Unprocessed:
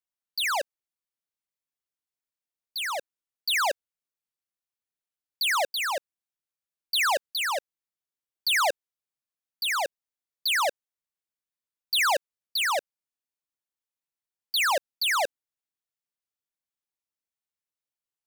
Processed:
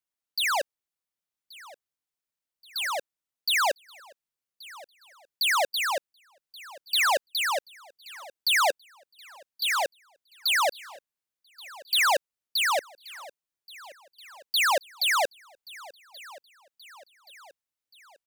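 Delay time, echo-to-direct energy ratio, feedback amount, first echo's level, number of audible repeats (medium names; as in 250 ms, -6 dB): 1128 ms, -19.5 dB, 52%, -21.0 dB, 3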